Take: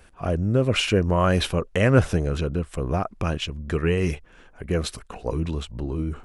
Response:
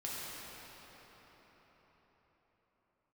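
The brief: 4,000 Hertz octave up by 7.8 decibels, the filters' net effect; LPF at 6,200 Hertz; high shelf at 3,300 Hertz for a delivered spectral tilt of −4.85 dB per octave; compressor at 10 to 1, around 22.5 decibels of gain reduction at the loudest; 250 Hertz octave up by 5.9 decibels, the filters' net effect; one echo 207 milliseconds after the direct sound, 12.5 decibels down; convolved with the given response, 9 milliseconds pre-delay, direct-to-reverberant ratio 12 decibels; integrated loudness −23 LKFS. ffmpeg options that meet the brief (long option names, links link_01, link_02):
-filter_complex "[0:a]lowpass=6200,equalizer=frequency=250:width_type=o:gain=8,highshelf=frequency=3300:gain=8.5,equalizer=frequency=4000:width_type=o:gain=5.5,acompressor=threshold=-31dB:ratio=10,aecho=1:1:207:0.237,asplit=2[link_01][link_02];[1:a]atrim=start_sample=2205,adelay=9[link_03];[link_02][link_03]afir=irnorm=-1:irlink=0,volume=-14.5dB[link_04];[link_01][link_04]amix=inputs=2:normalize=0,volume=12dB"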